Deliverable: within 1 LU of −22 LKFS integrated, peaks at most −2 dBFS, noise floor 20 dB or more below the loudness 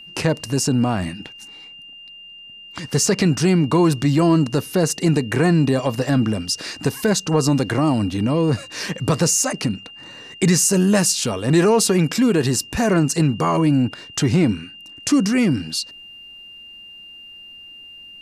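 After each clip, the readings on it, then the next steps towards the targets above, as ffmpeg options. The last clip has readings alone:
interfering tone 2,800 Hz; level of the tone −38 dBFS; integrated loudness −19.0 LKFS; sample peak −6.0 dBFS; target loudness −22.0 LKFS
→ -af "bandreject=frequency=2800:width=30"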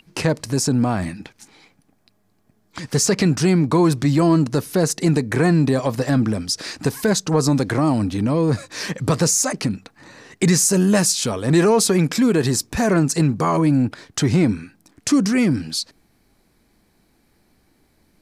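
interfering tone none found; integrated loudness −19.0 LKFS; sample peak −6.0 dBFS; target loudness −22.0 LKFS
→ -af "volume=-3dB"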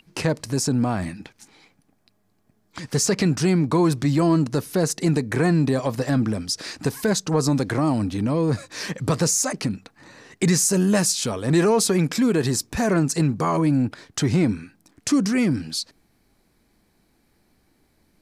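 integrated loudness −22.0 LKFS; sample peak −9.0 dBFS; background noise floor −65 dBFS

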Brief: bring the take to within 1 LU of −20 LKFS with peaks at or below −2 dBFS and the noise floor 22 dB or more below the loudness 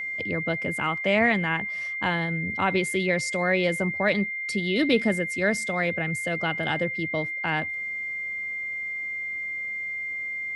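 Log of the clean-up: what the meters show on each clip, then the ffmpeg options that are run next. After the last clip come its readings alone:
interfering tone 2,100 Hz; level of the tone −29 dBFS; integrated loudness −26.0 LKFS; sample peak −9.0 dBFS; target loudness −20.0 LKFS
→ -af "bandreject=frequency=2100:width=30"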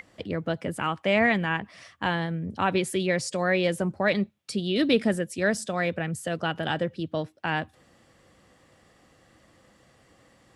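interfering tone none found; integrated loudness −27.0 LKFS; sample peak −10.0 dBFS; target loudness −20.0 LKFS
→ -af "volume=7dB"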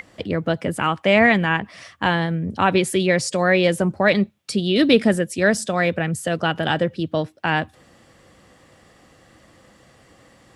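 integrated loudness −20.0 LKFS; sample peak −3.0 dBFS; background noise floor −54 dBFS

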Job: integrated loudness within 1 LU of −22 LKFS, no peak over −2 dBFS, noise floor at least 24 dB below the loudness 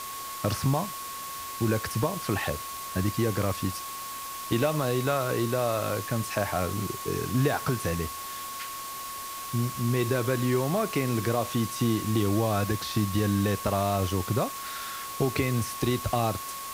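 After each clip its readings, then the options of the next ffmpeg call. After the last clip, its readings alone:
interfering tone 1,100 Hz; level of the tone −37 dBFS; background noise floor −37 dBFS; target noise floor −53 dBFS; integrated loudness −28.5 LKFS; sample peak −11.5 dBFS; target loudness −22.0 LKFS
→ -af "bandreject=frequency=1100:width=30"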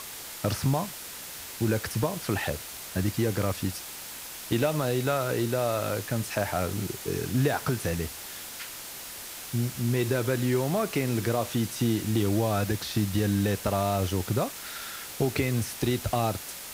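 interfering tone none found; background noise floor −41 dBFS; target noise floor −53 dBFS
→ -af "afftdn=noise_reduction=12:noise_floor=-41"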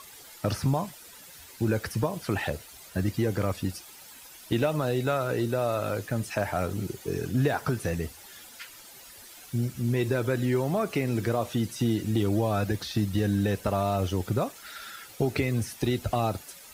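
background noise floor −49 dBFS; target noise floor −53 dBFS
→ -af "afftdn=noise_reduction=6:noise_floor=-49"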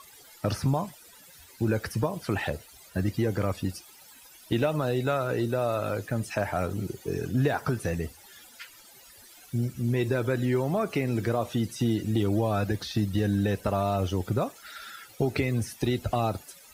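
background noise floor −52 dBFS; target noise floor −53 dBFS
→ -af "afftdn=noise_reduction=6:noise_floor=-52"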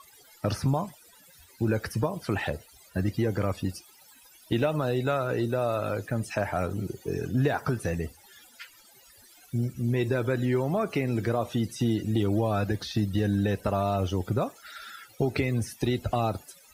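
background noise floor −56 dBFS; integrated loudness −28.5 LKFS; sample peak −12.5 dBFS; target loudness −22.0 LKFS
→ -af "volume=6.5dB"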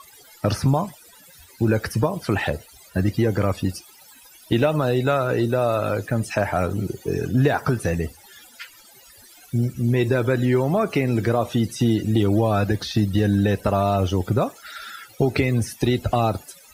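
integrated loudness −22.0 LKFS; sample peak −6.0 dBFS; background noise floor −49 dBFS

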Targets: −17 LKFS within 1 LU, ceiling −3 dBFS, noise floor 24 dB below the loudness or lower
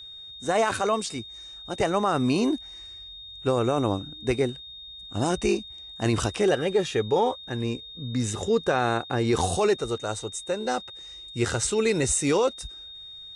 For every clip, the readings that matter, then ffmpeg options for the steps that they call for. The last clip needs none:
interfering tone 3,700 Hz; level of the tone −40 dBFS; integrated loudness −26.0 LKFS; sample peak −12.5 dBFS; target loudness −17.0 LKFS
→ -af "bandreject=frequency=3700:width=30"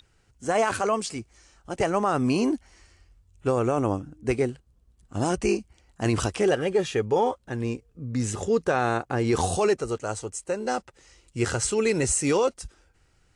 interfering tone none found; integrated loudness −26.0 LKFS; sample peak −13.0 dBFS; target loudness −17.0 LKFS
→ -af "volume=9dB"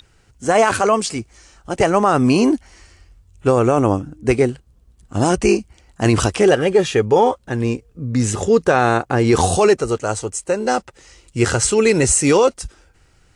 integrated loudness −17.0 LKFS; sample peak −4.0 dBFS; background noise floor −55 dBFS

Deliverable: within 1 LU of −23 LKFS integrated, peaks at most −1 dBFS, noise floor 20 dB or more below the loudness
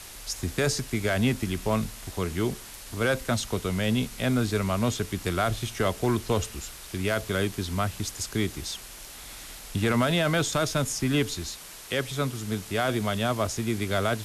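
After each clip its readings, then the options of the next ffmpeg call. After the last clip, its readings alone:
background noise floor −44 dBFS; target noise floor −48 dBFS; integrated loudness −28.0 LKFS; sample peak −15.5 dBFS; target loudness −23.0 LKFS
→ -af "afftdn=noise_reduction=6:noise_floor=-44"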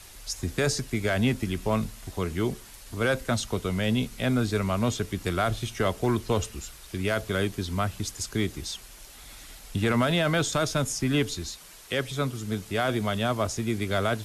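background noise floor −48 dBFS; integrated loudness −28.0 LKFS; sample peak −15.5 dBFS; target loudness −23.0 LKFS
→ -af "volume=5dB"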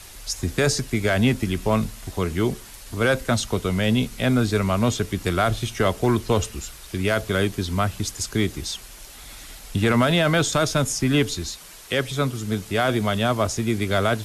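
integrated loudness −23.0 LKFS; sample peak −10.5 dBFS; background noise floor −43 dBFS

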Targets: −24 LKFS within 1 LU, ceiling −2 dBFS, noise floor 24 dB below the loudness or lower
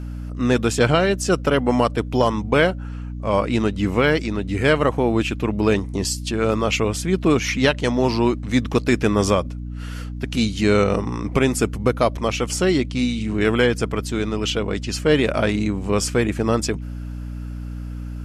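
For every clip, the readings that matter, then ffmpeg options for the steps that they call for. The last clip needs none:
mains hum 60 Hz; hum harmonics up to 300 Hz; level of the hum −28 dBFS; integrated loudness −20.5 LKFS; sample peak −4.5 dBFS; target loudness −24.0 LKFS
→ -af "bandreject=frequency=60:width_type=h:width=4,bandreject=frequency=120:width_type=h:width=4,bandreject=frequency=180:width_type=h:width=4,bandreject=frequency=240:width_type=h:width=4,bandreject=frequency=300:width_type=h:width=4"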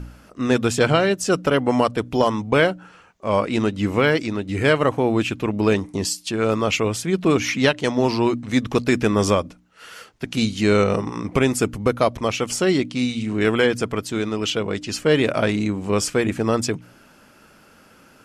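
mains hum none found; integrated loudness −21.0 LKFS; sample peak −5.0 dBFS; target loudness −24.0 LKFS
→ -af "volume=-3dB"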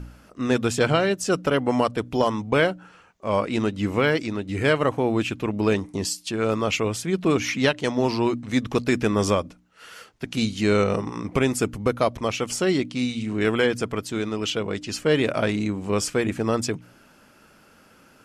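integrated loudness −24.0 LKFS; sample peak −8.0 dBFS; background noise floor −55 dBFS

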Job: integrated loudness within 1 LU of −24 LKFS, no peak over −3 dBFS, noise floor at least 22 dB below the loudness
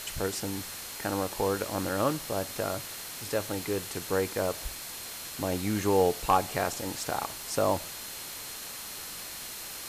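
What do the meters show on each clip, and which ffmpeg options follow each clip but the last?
interfering tone 4,200 Hz; level of the tone −50 dBFS; background noise floor −41 dBFS; target noise floor −54 dBFS; integrated loudness −31.5 LKFS; sample peak −12.0 dBFS; target loudness −24.0 LKFS
→ -af "bandreject=frequency=4200:width=30"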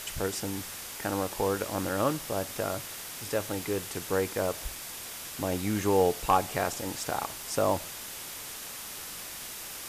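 interfering tone none found; background noise floor −41 dBFS; target noise floor −54 dBFS
→ -af "afftdn=noise_reduction=13:noise_floor=-41"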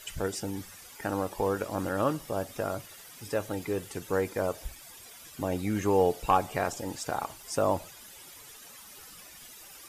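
background noise floor −50 dBFS; target noise floor −53 dBFS
→ -af "afftdn=noise_reduction=6:noise_floor=-50"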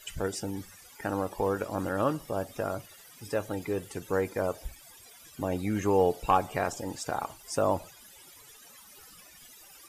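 background noise floor −53 dBFS; integrated loudness −31.0 LKFS; sample peak −12.5 dBFS; target loudness −24.0 LKFS
→ -af "volume=7dB"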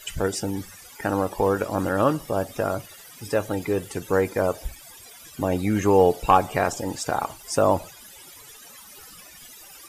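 integrated loudness −24.0 LKFS; sample peak −5.5 dBFS; background noise floor −46 dBFS

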